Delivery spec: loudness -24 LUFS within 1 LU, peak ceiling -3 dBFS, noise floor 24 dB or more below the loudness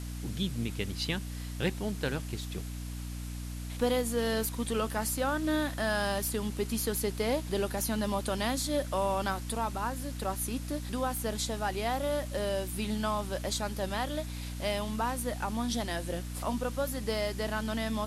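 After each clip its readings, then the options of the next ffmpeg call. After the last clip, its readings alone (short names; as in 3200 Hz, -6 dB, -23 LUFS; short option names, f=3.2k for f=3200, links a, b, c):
hum 60 Hz; harmonics up to 300 Hz; hum level -36 dBFS; noise floor -39 dBFS; noise floor target -57 dBFS; loudness -32.5 LUFS; peak -16.5 dBFS; loudness target -24.0 LUFS
-> -af "bandreject=f=60:t=h:w=6,bandreject=f=120:t=h:w=6,bandreject=f=180:t=h:w=6,bandreject=f=240:t=h:w=6,bandreject=f=300:t=h:w=6"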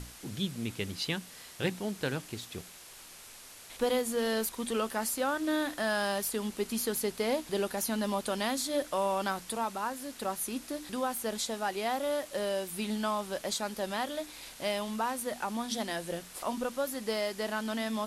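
hum none; noise floor -51 dBFS; noise floor target -57 dBFS
-> -af "afftdn=nr=6:nf=-51"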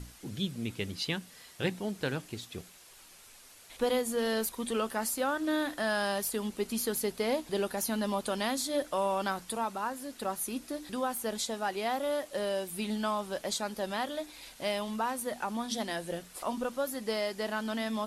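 noise floor -55 dBFS; noise floor target -58 dBFS
-> -af "afftdn=nr=6:nf=-55"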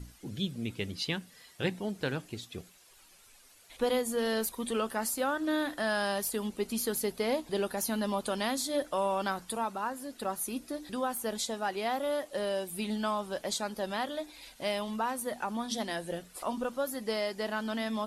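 noise floor -59 dBFS; loudness -33.5 LUFS; peak -17.5 dBFS; loudness target -24.0 LUFS
-> -af "volume=9.5dB"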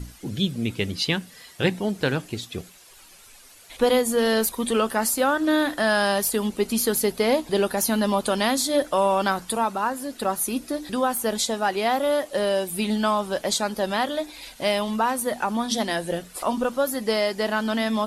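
loudness -24.0 LUFS; peak -8.0 dBFS; noise floor -49 dBFS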